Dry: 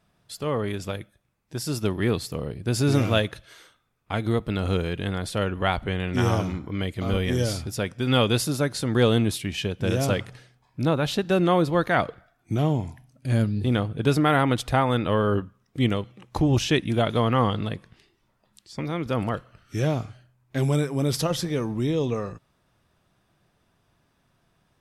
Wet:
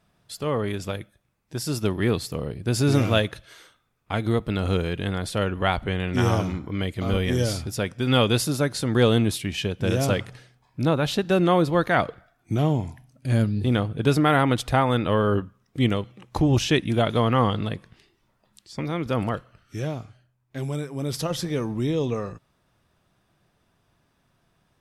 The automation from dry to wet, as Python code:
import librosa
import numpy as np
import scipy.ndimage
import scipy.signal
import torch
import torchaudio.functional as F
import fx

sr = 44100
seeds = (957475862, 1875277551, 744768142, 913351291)

y = fx.gain(x, sr, db=fx.line((19.26, 1.0), (20.0, -6.5), (20.85, -6.5), (21.5, 0.0)))